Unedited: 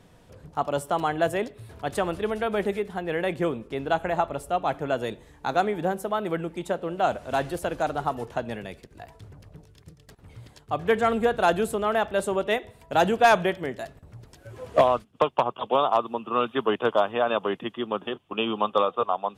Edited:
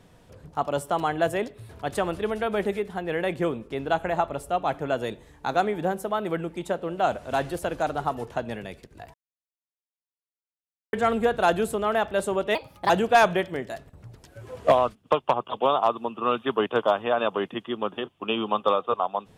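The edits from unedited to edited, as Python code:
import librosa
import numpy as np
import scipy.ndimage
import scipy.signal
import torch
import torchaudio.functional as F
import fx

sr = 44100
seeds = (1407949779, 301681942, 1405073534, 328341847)

y = fx.edit(x, sr, fx.silence(start_s=9.14, length_s=1.79),
    fx.speed_span(start_s=12.55, length_s=0.44, speed=1.27), tone=tone)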